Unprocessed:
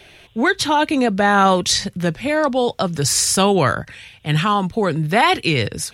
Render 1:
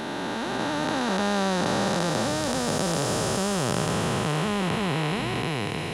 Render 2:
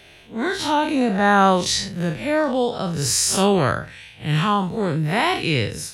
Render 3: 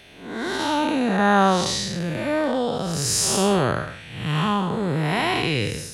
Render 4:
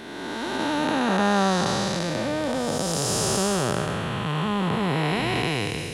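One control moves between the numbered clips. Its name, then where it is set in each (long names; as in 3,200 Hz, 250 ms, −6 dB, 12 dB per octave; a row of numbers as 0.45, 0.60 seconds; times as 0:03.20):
spectrum smeared in time, width: 1,750, 106, 263, 707 milliseconds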